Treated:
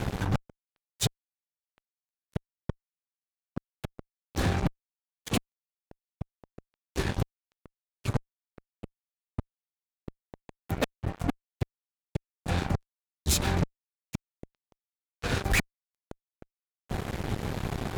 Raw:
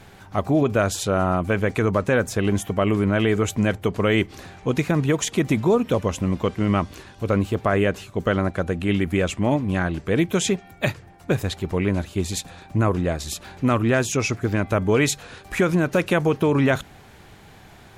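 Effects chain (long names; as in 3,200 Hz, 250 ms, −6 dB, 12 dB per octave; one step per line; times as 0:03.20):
low-shelf EQ 490 Hz +12 dB
gate with flip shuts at −11 dBFS, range −39 dB
fuzz pedal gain 32 dB, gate −39 dBFS
level −7 dB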